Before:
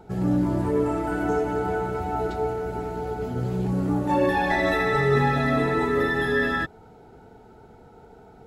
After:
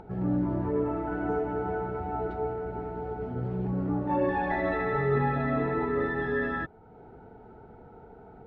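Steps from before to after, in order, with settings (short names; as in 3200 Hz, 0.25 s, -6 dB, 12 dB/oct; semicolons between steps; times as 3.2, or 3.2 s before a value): LPF 1800 Hz 12 dB/oct; upward compressor, threshold -37 dBFS; gain -5 dB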